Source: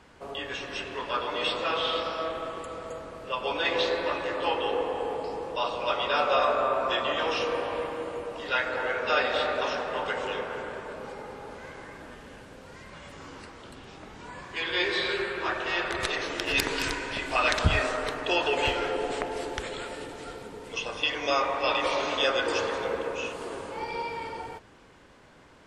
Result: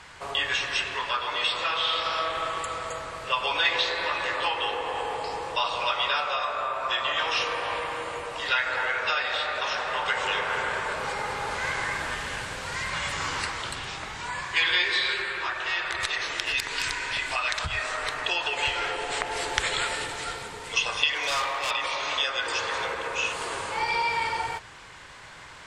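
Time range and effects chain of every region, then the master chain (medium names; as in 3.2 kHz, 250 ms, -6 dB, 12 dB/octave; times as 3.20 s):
21.15–21.71 s: resonant low shelf 250 Hz -8 dB, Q 1.5 + hard clipper -27.5 dBFS
whole clip: compression, threshold -29 dBFS; graphic EQ 125/250/500/1000/2000/4000/8000 Hz +3/-9/-3/+5/+7/+6/+9 dB; gain riding 2 s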